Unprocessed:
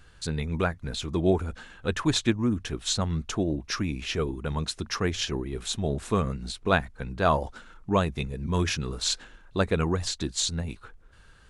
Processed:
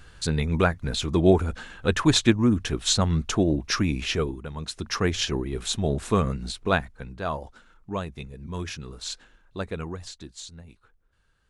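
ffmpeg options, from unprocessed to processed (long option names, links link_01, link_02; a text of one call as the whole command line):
ffmpeg -i in.wav -af "volume=15.5dB,afade=type=out:start_time=4.03:duration=0.49:silence=0.237137,afade=type=in:start_time=4.52:duration=0.48:silence=0.298538,afade=type=out:start_time=6.37:duration=0.88:silence=0.316228,afade=type=out:start_time=9.71:duration=0.76:silence=0.446684" out.wav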